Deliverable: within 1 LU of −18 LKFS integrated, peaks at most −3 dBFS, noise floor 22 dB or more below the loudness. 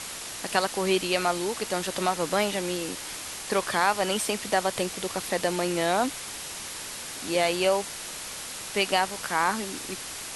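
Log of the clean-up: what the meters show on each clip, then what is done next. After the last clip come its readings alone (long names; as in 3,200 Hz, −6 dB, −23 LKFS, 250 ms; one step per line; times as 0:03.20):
background noise floor −38 dBFS; target noise floor −50 dBFS; integrated loudness −27.5 LKFS; sample peak −8.0 dBFS; target loudness −18.0 LKFS
→ broadband denoise 12 dB, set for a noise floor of −38 dBFS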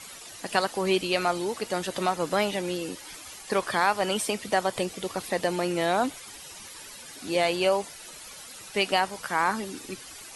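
background noise floor −44 dBFS; target noise floor −49 dBFS
→ broadband denoise 6 dB, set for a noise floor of −44 dBFS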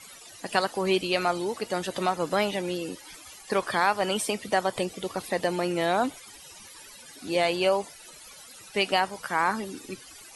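background noise floor −48 dBFS; target noise floor −50 dBFS
→ broadband denoise 6 dB, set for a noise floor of −48 dBFS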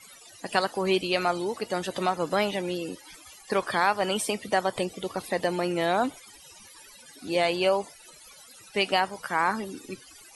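background noise floor −51 dBFS; integrated loudness −27.5 LKFS; sample peak −8.0 dBFS; target loudness −18.0 LKFS
→ level +9.5 dB
brickwall limiter −3 dBFS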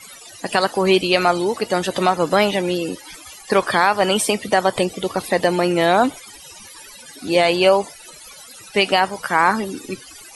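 integrated loudness −18.5 LKFS; sample peak −3.0 dBFS; background noise floor −41 dBFS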